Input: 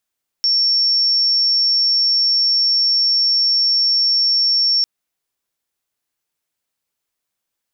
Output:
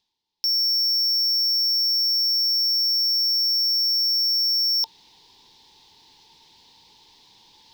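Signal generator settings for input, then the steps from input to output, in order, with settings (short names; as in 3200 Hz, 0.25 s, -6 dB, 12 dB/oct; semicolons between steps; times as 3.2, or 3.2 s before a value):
tone sine 5460 Hz -12.5 dBFS 4.40 s
EQ curve 450 Hz 0 dB, 630 Hz -16 dB, 900 Hz +11 dB, 1300 Hz -20 dB, 1800 Hz -8 dB, 2600 Hz -4 dB, 3700 Hz +7 dB, 5200 Hz +2 dB, 7400 Hz -15 dB, 10000 Hz -22 dB; reverse; upward compressor, threshold -31 dBFS; reverse; soft clip -19.5 dBFS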